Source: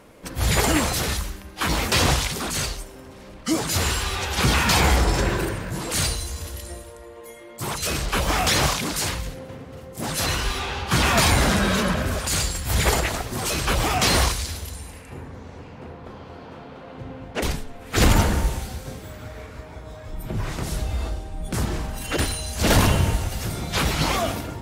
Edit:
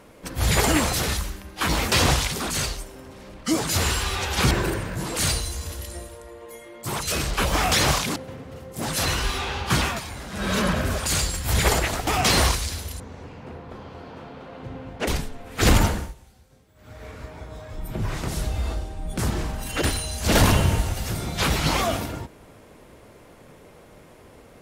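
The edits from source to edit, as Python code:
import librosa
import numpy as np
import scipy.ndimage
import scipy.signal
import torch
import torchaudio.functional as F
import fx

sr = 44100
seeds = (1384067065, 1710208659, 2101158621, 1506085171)

y = fx.edit(x, sr, fx.cut(start_s=4.51, length_s=0.75),
    fx.cut(start_s=8.91, length_s=0.46),
    fx.fade_down_up(start_s=10.92, length_s=0.9, db=-17.5, fade_s=0.3),
    fx.cut(start_s=13.28, length_s=0.56),
    fx.cut(start_s=14.77, length_s=0.58),
    fx.fade_down_up(start_s=18.1, length_s=1.39, db=-22.0, fade_s=0.39), tone=tone)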